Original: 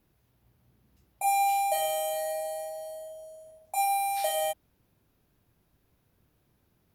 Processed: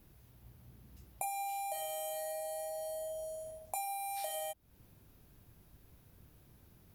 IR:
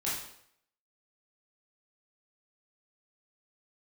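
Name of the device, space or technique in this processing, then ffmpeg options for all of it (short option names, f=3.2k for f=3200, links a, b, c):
ASMR close-microphone chain: -af "lowshelf=f=150:g=7.5,acompressor=threshold=-42dB:ratio=10,highshelf=f=6.4k:g=5.5,volume=4dB"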